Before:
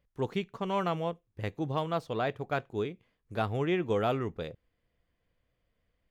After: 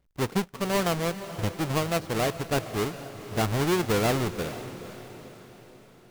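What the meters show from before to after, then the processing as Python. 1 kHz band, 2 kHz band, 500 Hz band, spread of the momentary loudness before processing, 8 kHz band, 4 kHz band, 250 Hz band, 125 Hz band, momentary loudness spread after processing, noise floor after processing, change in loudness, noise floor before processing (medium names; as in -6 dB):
+3.5 dB, +7.0 dB, +3.5 dB, 10 LU, no reading, +10.0 dB, +5.5 dB, +6.0 dB, 16 LU, -54 dBFS, +5.0 dB, -80 dBFS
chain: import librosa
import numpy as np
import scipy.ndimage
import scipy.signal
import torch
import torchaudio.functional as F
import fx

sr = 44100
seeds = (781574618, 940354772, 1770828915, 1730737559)

y = fx.halfwave_hold(x, sr)
y = fx.echo_diffused(y, sr, ms=465, feedback_pct=51, wet_db=-13.0)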